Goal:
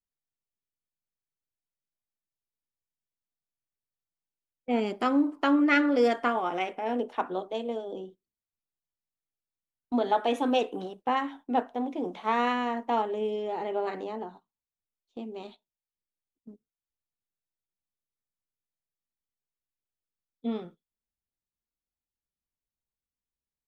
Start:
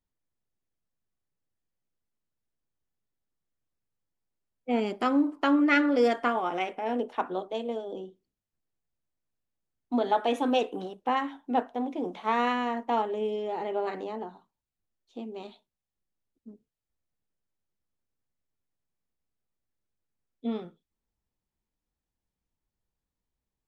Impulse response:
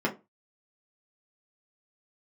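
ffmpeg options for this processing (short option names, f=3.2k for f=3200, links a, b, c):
-af "agate=range=-12dB:threshold=-48dB:ratio=16:detection=peak"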